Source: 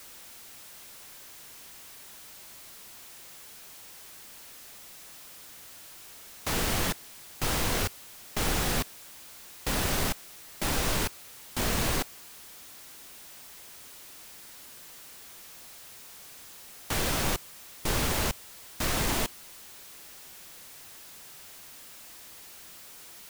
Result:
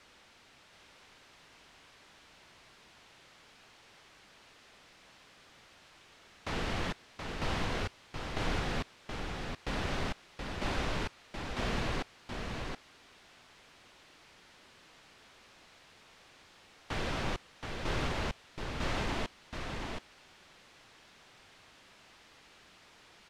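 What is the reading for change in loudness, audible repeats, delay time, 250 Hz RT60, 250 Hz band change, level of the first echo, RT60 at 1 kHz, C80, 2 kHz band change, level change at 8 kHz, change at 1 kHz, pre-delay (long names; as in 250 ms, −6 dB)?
−8.0 dB, 1, 725 ms, no reverb audible, −4.0 dB, −5.0 dB, no reverb audible, no reverb audible, −4.5 dB, −17.5 dB, −4.0 dB, no reverb audible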